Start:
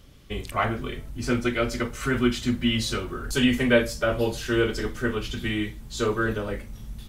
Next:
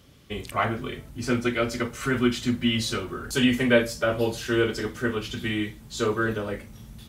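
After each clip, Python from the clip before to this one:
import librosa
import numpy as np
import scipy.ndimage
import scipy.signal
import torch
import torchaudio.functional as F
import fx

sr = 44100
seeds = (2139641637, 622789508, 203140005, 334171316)

y = scipy.signal.sosfilt(scipy.signal.butter(2, 80.0, 'highpass', fs=sr, output='sos'), x)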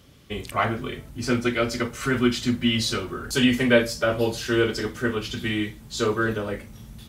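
y = fx.dynamic_eq(x, sr, hz=4800.0, q=2.3, threshold_db=-45.0, ratio=4.0, max_db=4)
y = y * 10.0 ** (1.5 / 20.0)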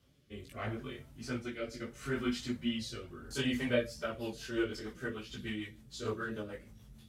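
y = fx.chorus_voices(x, sr, voices=2, hz=0.74, base_ms=18, depth_ms=4.8, mix_pct=55)
y = fx.rotary_switch(y, sr, hz=0.75, then_hz=6.7, switch_at_s=3.55)
y = y * 10.0 ** (-9.0 / 20.0)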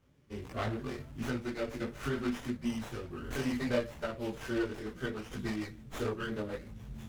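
y = fx.recorder_agc(x, sr, target_db=-24.5, rise_db_per_s=13.0, max_gain_db=30)
y = fx.running_max(y, sr, window=9)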